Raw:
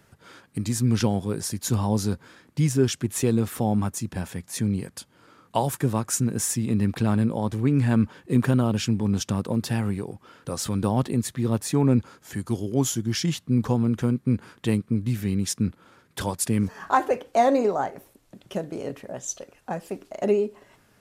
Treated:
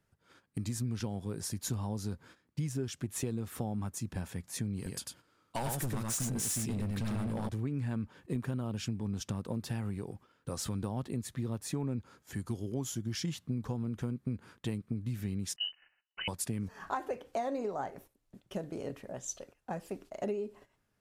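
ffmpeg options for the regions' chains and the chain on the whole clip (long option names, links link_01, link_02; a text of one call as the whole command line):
ffmpeg -i in.wav -filter_complex "[0:a]asettb=1/sr,asplit=3[link_01][link_02][link_03];[link_01]atrim=end=4.764[link_04];[link_02]atrim=start=4.76:end=7.49,asetpts=PTS-STARTPTS,afade=type=in:duration=0.004:curve=qsin,afade=type=out:start_time=2.726:duration=0.004:curve=qsin,highshelf=frequency=2300:gain=6,aecho=1:1:98:0.668,atrim=end_sample=120393,asoftclip=type=hard:threshold=-21.5dB[link_05];[link_03]atrim=start=7.486[link_06];[link_04][link_05]acrossfade=duration=0.004:curve1=hsin:curve2=qsin[link_07];[link_07][link_06]acrossfade=duration=0.004:curve1=qsin:curve2=hsin,asettb=1/sr,asplit=3[link_08][link_09][link_10];[link_08]atrim=end=15.564[link_11];[link_09]atrim=start=15.56:end=16.28,asetpts=PTS-STARTPTS,afade=type=in:duration=0.004:curve=qsin,afade=type=out:start_time=0.716:duration=0.004:curve=qsin,agate=range=-13dB:threshold=-56dB:ratio=16:release=100:detection=peak,equalizer=frequency=330:width_type=o:width=0.46:gain=-7,lowpass=frequency=2600:width_type=q:width=0.5098,lowpass=frequency=2600:width_type=q:width=0.6013,lowpass=frequency=2600:width_type=q:width=0.9,lowpass=frequency=2600:width_type=q:width=2.563,afreqshift=-3100[link_12];[link_10]atrim=start=16.276[link_13];[link_11][link_12]acrossfade=duration=0.004:curve1=hsin:curve2=qsin[link_14];[link_14][link_13]acrossfade=duration=0.004:curve1=qsin:curve2=hsin,agate=range=-12dB:threshold=-46dB:ratio=16:detection=peak,lowshelf=frequency=72:gain=9.5,acompressor=threshold=-24dB:ratio=6,volume=-7.5dB" out.wav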